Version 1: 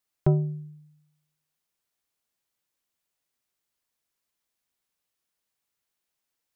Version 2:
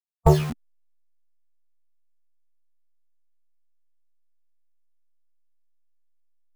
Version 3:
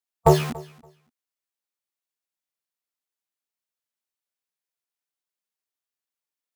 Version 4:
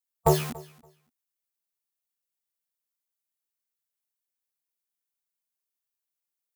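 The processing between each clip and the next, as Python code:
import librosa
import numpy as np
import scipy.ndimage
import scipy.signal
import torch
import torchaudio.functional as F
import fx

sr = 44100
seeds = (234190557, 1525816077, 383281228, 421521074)

y1 = fx.delta_hold(x, sr, step_db=-29.5)
y1 = fx.fold_sine(y1, sr, drive_db=6, ceiling_db=-10.0)
y1 = fx.noise_reduce_blind(y1, sr, reduce_db=13)
y1 = y1 * librosa.db_to_amplitude(5.5)
y2 = fx.highpass(y1, sr, hz=280.0, slope=6)
y2 = fx.echo_feedback(y2, sr, ms=284, feedback_pct=17, wet_db=-22.0)
y2 = y2 * librosa.db_to_amplitude(4.5)
y3 = fx.high_shelf(y2, sr, hz=7600.0, db=11.5)
y3 = y3 * librosa.db_to_amplitude(-5.5)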